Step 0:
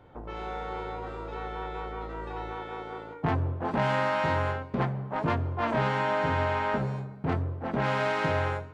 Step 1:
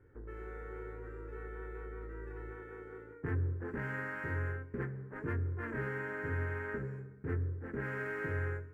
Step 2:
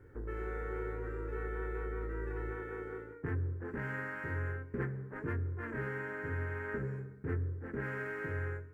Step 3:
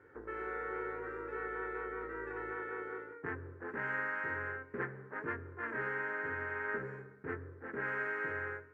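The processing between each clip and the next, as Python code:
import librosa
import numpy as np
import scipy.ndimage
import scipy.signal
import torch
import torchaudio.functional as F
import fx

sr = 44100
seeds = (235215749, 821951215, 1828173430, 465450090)

y1 = scipy.signal.medfilt(x, 5)
y1 = fx.curve_eq(y1, sr, hz=(100.0, 170.0, 430.0, 670.0, 1100.0, 1700.0, 3700.0, 7500.0), db=(0, -11, 0, -23, -15, 1, -29, -10))
y1 = y1 * librosa.db_to_amplitude(-4.0)
y2 = fx.rider(y1, sr, range_db=5, speed_s=0.5)
y2 = y2 * librosa.db_to_amplitude(1.0)
y3 = fx.bandpass_q(y2, sr, hz=1300.0, q=0.62)
y3 = y3 * librosa.db_to_amplitude(5.0)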